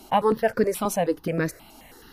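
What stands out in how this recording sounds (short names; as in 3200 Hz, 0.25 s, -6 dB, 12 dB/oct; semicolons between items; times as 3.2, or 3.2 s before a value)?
notches that jump at a steady rate 9.4 Hz 500–3000 Hz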